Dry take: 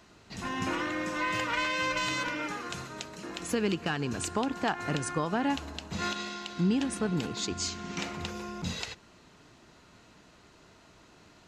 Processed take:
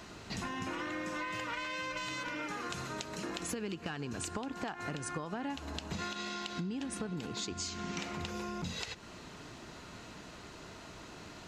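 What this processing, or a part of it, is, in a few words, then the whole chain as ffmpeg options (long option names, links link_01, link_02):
serial compression, peaks first: -af "acompressor=threshold=-39dB:ratio=6,acompressor=threshold=-52dB:ratio=1.5,volume=8dB"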